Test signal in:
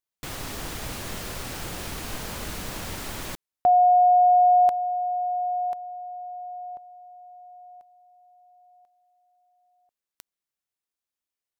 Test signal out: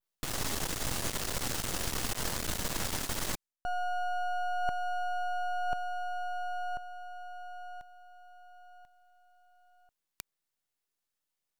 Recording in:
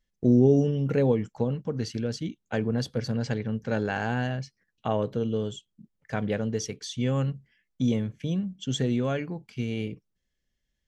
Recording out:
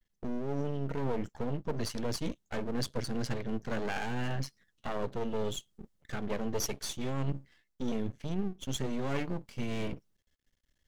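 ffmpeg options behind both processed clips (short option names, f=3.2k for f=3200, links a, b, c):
-af "bandreject=f=2.4k:w=16,alimiter=limit=-16.5dB:level=0:latency=1:release=191,aeval=exprs='max(val(0),0)':c=same,areverse,acompressor=threshold=-36dB:ratio=12:attack=84:release=424:knee=6:detection=rms,areverse,adynamicequalizer=threshold=0.00251:dfrequency=7300:dqfactor=0.76:tfrequency=7300:tqfactor=0.76:attack=5:release=100:ratio=0.375:range=2:mode=boostabove:tftype=bell,volume=6.5dB"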